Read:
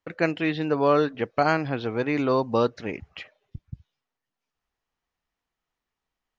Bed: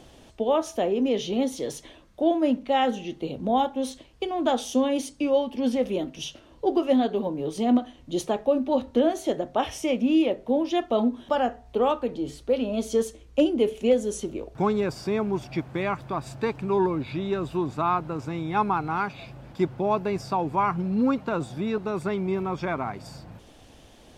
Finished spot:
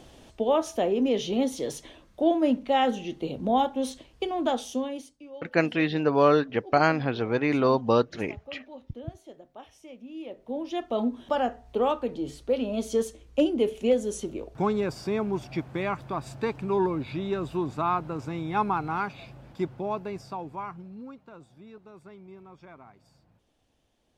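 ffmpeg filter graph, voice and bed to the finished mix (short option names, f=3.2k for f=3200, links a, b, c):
-filter_complex "[0:a]adelay=5350,volume=0.5dB[a];[1:a]volume=18.5dB,afade=t=out:st=4.27:d=0.91:silence=0.0944061,afade=t=in:st=10.14:d=1.13:silence=0.112202,afade=t=out:st=18.9:d=2.16:silence=0.11885[b];[a][b]amix=inputs=2:normalize=0"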